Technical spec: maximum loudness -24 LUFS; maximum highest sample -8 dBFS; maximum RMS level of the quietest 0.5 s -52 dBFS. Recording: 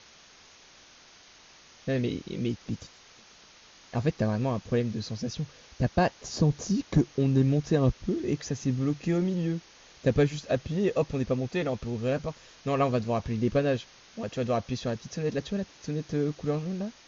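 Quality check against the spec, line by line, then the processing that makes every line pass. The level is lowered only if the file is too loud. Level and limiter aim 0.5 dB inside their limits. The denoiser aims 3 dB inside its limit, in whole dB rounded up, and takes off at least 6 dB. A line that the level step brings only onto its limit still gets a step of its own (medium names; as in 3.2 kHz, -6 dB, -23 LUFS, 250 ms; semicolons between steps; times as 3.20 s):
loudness -29.0 LUFS: pass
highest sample -11.0 dBFS: pass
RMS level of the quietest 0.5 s -55 dBFS: pass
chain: none needed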